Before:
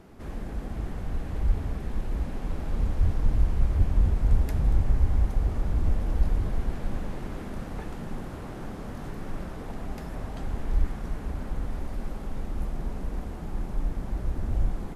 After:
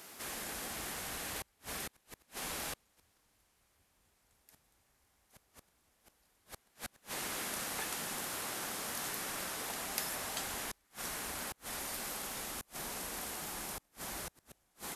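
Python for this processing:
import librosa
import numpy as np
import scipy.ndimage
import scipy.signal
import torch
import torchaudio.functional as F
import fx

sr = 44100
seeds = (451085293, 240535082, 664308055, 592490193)

y = fx.gate_flip(x, sr, shuts_db=-19.0, range_db=-34)
y = np.diff(y, prepend=0.0)
y = y * 10.0 ** (18.0 / 20.0)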